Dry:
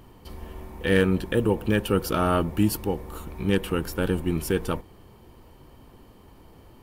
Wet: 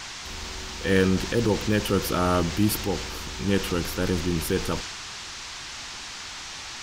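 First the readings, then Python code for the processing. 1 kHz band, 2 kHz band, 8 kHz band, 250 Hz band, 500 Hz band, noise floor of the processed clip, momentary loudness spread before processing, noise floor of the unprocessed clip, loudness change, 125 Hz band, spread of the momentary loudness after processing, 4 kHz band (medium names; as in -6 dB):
+0.5 dB, +1.5 dB, +7.5 dB, -0.5 dB, -0.5 dB, -38 dBFS, 17 LU, -52 dBFS, -1.5 dB, 0.0 dB, 12 LU, +7.0 dB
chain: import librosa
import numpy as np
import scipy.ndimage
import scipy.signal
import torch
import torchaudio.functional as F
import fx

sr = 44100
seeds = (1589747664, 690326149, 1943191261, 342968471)

y = fx.dmg_noise_band(x, sr, seeds[0], low_hz=740.0, high_hz=6500.0, level_db=-38.0)
y = fx.transient(y, sr, attack_db=-2, sustain_db=3)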